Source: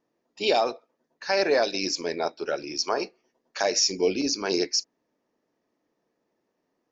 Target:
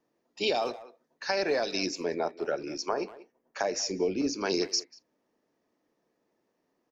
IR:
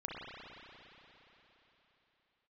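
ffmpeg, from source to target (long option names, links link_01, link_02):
-filter_complex "[0:a]asettb=1/sr,asplit=3[link_01][link_02][link_03];[link_01]atrim=end=1.864[link_04];[link_02]atrim=start=1.86:end=4.41,asetpts=PTS-STARTPTS,afade=type=in:duration=0.004:curve=qsin,afade=type=out:start_time=2.546:duration=0.004:curve=qsin,equalizer=frequency=4300:width_type=o:width=1.7:gain=-11[link_05];[link_03]atrim=start=4.406[link_06];[link_04][link_05]acrossfade=duration=0.004:curve1=hsin:curve2=qsin[link_07];[link_07][link_06]acrossfade=duration=0.004:curve1=qsin:curve2=hsin,acrossover=split=200[link_08][link_09];[link_09]acompressor=threshold=-25dB:ratio=6[link_10];[link_08][link_10]amix=inputs=2:normalize=0,asplit=2[link_11][link_12];[link_12]adelay=190,highpass=300,lowpass=3400,asoftclip=type=hard:threshold=-25.5dB,volume=-16dB[link_13];[link_11][link_13]amix=inputs=2:normalize=0"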